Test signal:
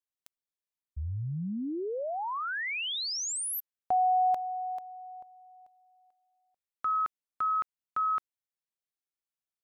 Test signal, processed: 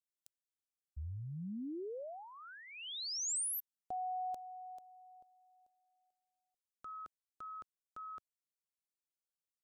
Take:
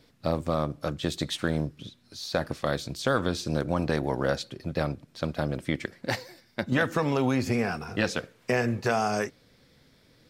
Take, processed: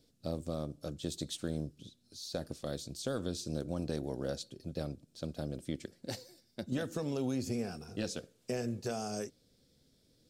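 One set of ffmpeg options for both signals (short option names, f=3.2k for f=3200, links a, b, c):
-af "equalizer=f=125:t=o:w=1:g=-3,equalizer=f=1k:t=o:w=1:g=-11,equalizer=f=2k:t=o:w=1:g=-12,equalizer=f=8k:t=o:w=1:g=5,volume=-7dB"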